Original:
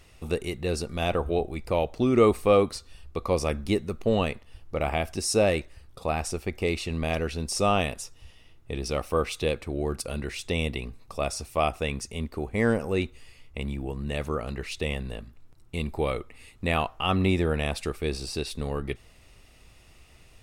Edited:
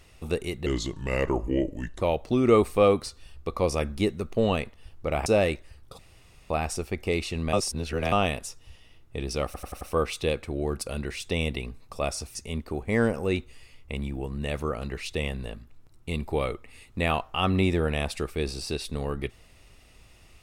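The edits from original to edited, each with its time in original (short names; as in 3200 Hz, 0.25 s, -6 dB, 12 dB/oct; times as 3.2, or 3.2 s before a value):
0.66–1.7 speed 77%
4.95–5.32 cut
6.05 insert room tone 0.51 s
7.08–7.67 reverse
9 stutter 0.09 s, 5 plays
11.54–12.01 cut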